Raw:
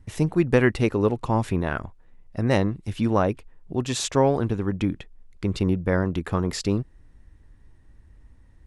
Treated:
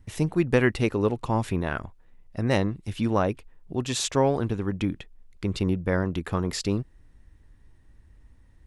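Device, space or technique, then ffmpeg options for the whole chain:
presence and air boost: -af "equalizer=f=3200:t=o:w=1.5:g=2.5,highshelf=f=10000:g=5.5,volume=0.75"

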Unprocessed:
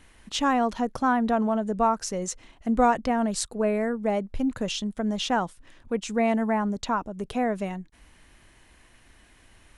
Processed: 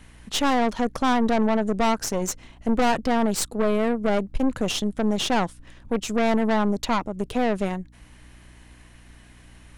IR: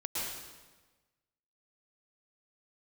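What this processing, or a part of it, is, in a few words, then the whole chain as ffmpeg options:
valve amplifier with mains hum: -af "aeval=exprs='(tanh(20*val(0)+0.8)-tanh(0.8))/20':c=same,aeval=exprs='val(0)+0.00126*(sin(2*PI*60*n/s)+sin(2*PI*2*60*n/s)/2+sin(2*PI*3*60*n/s)/3+sin(2*PI*4*60*n/s)/4+sin(2*PI*5*60*n/s)/5)':c=same,volume=2.66"

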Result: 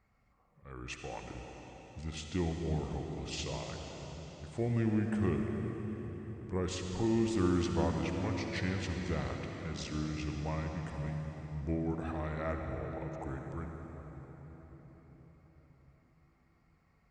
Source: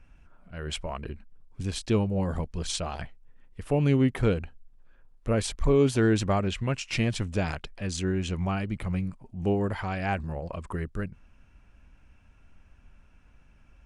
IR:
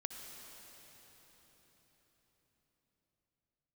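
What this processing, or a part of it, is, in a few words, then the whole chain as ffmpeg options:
slowed and reverbed: -filter_complex "[0:a]highpass=86,equalizer=f=930:t=o:w=0.34:g=4,asetrate=35721,aresample=44100[s0];[1:a]atrim=start_sample=2205[s1];[s0][s1]afir=irnorm=-1:irlink=0,volume=0.501"

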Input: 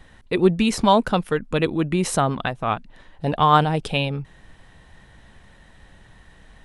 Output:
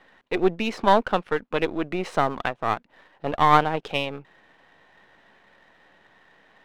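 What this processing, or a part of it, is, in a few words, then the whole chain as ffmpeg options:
crystal radio: -af "highpass=350,lowpass=2800,aeval=exprs='if(lt(val(0),0),0.447*val(0),val(0))':c=same,volume=1.19"

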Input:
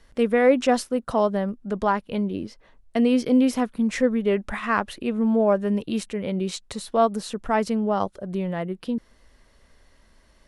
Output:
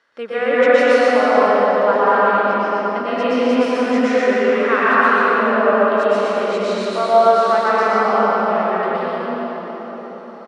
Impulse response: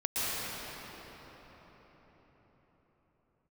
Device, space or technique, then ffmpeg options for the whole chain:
station announcement: -filter_complex "[0:a]highpass=420,lowpass=4800,equalizer=f=1400:t=o:w=0.5:g=10,aecho=1:1:119.5|256.6:0.708|0.316[s0];[1:a]atrim=start_sample=2205[s1];[s0][s1]afir=irnorm=-1:irlink=0,volume=0.75"

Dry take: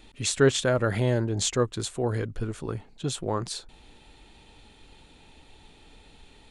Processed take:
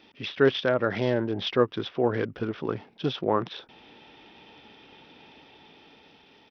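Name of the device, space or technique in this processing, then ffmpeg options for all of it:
Bluetooth headset: -af "highpass=190,dynaudnorm=f=380:g=7:m=1.78,aresample=8000,aresample=44100" -ar 44100 -c:a sbc -b:a 64k

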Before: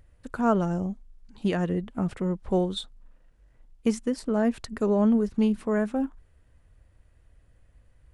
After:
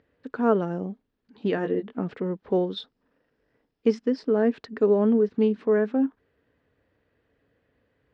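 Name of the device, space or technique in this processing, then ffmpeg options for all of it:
kitchen radio: -filter_complex "[0:a]asettb=1/sr,asplit=3[s0][s1][s2];[s0]atrim=end=1.554[s3];[s1]atrim=start=1.55:end=1.97,asetpts=PTS-STARTPTS,afade=t=in:d=0.004:c=qsin,afade=t=out:st=0.416:d=0.004:c=qsin,asplit=2[s4][s5];[s5]adelay=20,volume=0.562[s6];[s4][s6]amix=inputs=2:normalize=0,atrim=end_sample=18522[s7];[s2]atrim=start=1.966[s8];[s3][s7]acrossfade=d=0.004:c1=hsin:c2=qsin[s9];[s9][s8]acrossfade=d=0.004:c1=qsin:c2=hsin,asettb=1/sr,asplit=3[s10][s11][s12];[s10]atrim=end=2.524[s13];[s11]atrim=start=2.52:end=4.33,asetpts=PTS-STARTPTS,afade=t=in:d=0.004:c=qsin,afade=t=out:st=1.806:d=0.004:c=qsin,equalizer=f=5200:t=o:w=0.22:g=10.5[s14];[s12]atrim=start=4.326[s15];[s13][s14]acrossfade=d=0.004:c1=hsin:c2=qsin[s16];[s16][s15]acrossfade=d=0.004:c1=qsin:c2=hsin,highpass=170,equalizer=f=270:t=q:w=4:g=7,equalizer=f=440:t=q:w=4:g=10,equalizer=f=1700:t=q:w=4:g=4,lowpass=f=4500:w=0.5412,lowpass=f=4500:w=1.3066,volume=0.794"

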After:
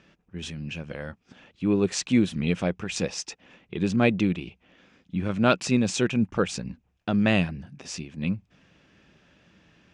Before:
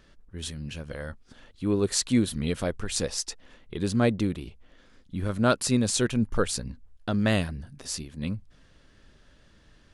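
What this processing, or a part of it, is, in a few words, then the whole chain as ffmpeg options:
car door speaker: -filter_complex "[0:a]asettb=1/sr,asplit=3[s0][s1][s2];[s0]atrim=end=3.964[s3];[s1]atrim=start=3.96:end=5.65,asetpts=PTS-STARTPTS,afade=t=in:d=0.004:c=qsin,afade=t=out:st=1.686:d=0.004:c=qsin,adynamicequalizer=threshold=0.00562:dfrequency=3100:dqfactor=1:tfrequency=3100:tqfactor=1:attack=5:release=100:ratio=0.375:range=2:mode=boostabove:tftype=bell[s4];[s2]atrim=start=5.646[s5];[s3][s4]acrossfade=d=0.004:c1=hsin:c2=qsin[s6];[s6][s5]acrossfade=d=0.004:c1=qsin:c2=hsin,highpass=95,equalizer=f=180:t=q:w=4:g=8,equalizer=f=330:t=q:w=4:g=3,equalizer=f=780:t=q:w=4:g=4,equalizer=f=2500:t=q:w=4:g=9,equalizer=f=4300:t=q:w=4:g=-6,lowpass=f=6800:w=0.5412,lowpass=f=6800:w=1.3066"

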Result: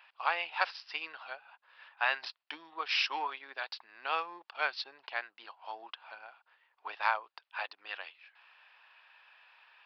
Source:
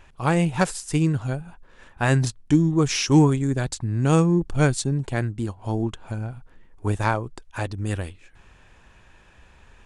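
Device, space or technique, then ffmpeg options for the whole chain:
musical greeting card: -af "aresample=11025,aresample=44100,highpass=f=800:w=0.5412,highpass=f=800:w=1.3066,equalizer=f=2700:t=o:w=0.33:g=5,volume=0.631"

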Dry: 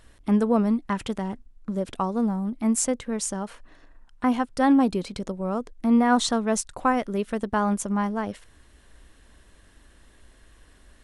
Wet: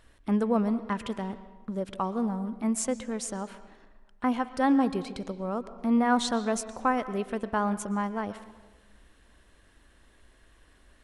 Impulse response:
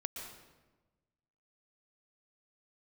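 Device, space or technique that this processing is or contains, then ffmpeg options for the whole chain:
filtered reverb send: -filter_complex "[0:a]asplit=2[s0][s1];[s1]highpass=f=380:p=1,lowpass=4700[s2];[1:a]atrim=start_sample=2205[s3];[s2][s3]afir=irnorm=-1:irlink=0,volume=0.562[s4];[s0][s4]amix=inputs=2:normalize=0,volume=0.501"

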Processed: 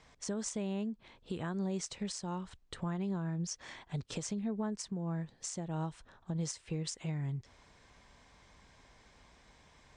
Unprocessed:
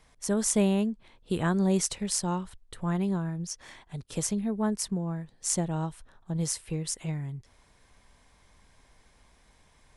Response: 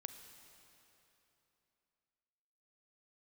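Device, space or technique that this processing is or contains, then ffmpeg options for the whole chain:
podcast mastering chain: -af "highpass=f=60:p=1,equalizer=f=9500:t=o:w=0.34:g=-13.5,acompressor=threshold=0.0224:ratio=2.5,alimiter=level_in=1.68:limit=0.0631:level=0:latency=1:release=400,volume=0.596,volume=1.26" -ar 22050 -c:a libmp3lame -b:a 96k

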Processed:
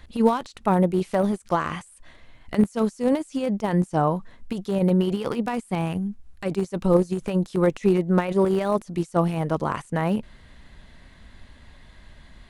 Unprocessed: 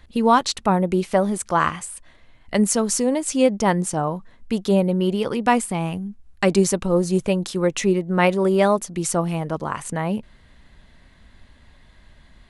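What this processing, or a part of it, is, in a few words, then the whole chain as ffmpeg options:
de-esser from a sidechain: -filter_complex "[0:a]asplit=2[s0][s1];[s1]highpass=6900,apad=whole_len=551079[s2];[s0][s2]sidechaincompress=threshold=0.00282:ratio=12:attack=0.74:release=26,volume=1.33"

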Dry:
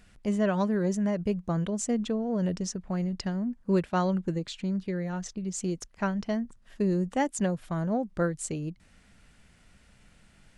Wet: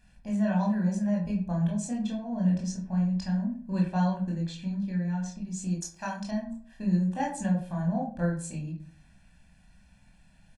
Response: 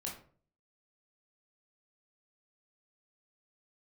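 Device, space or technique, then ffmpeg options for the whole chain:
microphone above a desk: -filter_complex "[0:a]aecho=1:1:1.2:0.83[s0];[1:a]atrim=start_sample=2205[s1];[s0][s1]afir=irnorm=-1:irlink=0,asettb=1/sr,asplit=3[s2][s3][s4];[s2]atrim=end=5.824[s5];[s3]atrim=start=5.82:end=6.31,asetpts=PTS-STARTPTS,afade=t=in:d=0.004:c=qsin,afade=t=out:st=0.486:d=0.004:c=qsin,bass=f=250:g=-8,treble=f=4000:g=13[s6];[s4]atrim=start=6.306[s7];[s5][s6]acrossfade=d=0.004:c1=hsin:c2=qsin[s8];[s8][s7]acrossfade=d=0.004:c1=qsin:c2=hsin,volume=0.562"

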